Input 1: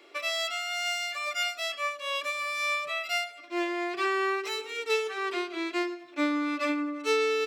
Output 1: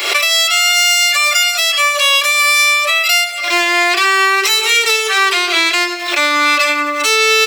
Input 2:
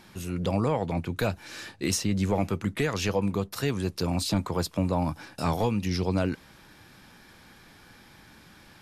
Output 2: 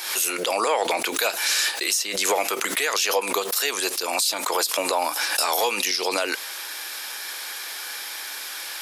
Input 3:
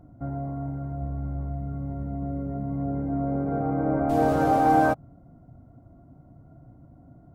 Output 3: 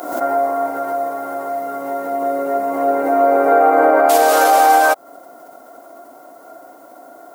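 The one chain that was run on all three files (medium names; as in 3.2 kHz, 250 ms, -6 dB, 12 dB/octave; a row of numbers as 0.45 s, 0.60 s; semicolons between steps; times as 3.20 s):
high-pass 390 Hz 24 dB/octave; tilt EQ +4 dB/octave; compression 16:1, threshold -31 dBFS; peak limiter -27 dBFS; swell ahead of each attack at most 60 dB/s; peak normalisation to -3 dBFS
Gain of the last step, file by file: +23.0 dB, +15.5 dB, +24.0 dB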